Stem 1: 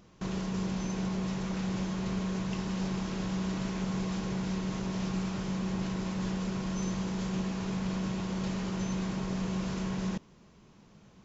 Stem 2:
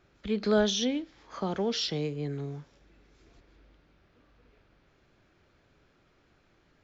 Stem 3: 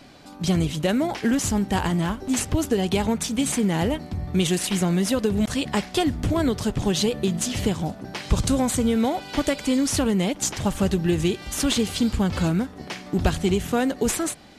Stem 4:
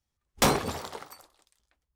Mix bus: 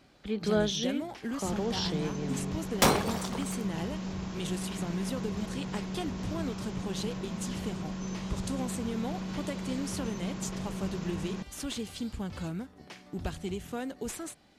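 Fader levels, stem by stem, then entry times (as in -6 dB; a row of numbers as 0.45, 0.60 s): -4.0, -3.0, -14.0, -0.5 dB; 1.25, 0.00, 0.00, 2.40 s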